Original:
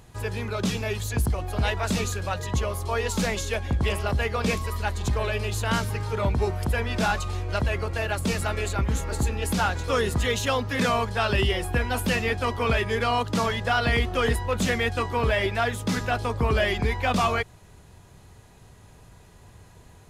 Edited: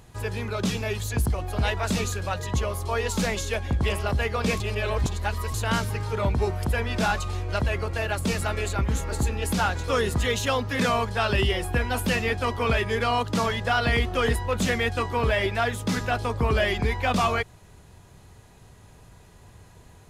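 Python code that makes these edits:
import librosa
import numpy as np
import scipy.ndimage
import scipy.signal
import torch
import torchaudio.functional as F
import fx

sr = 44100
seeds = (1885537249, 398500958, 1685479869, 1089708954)

y = fx.edit(x, sr, fx.reverse_span(start_s=4.6, length_s=0.94), tone=tone)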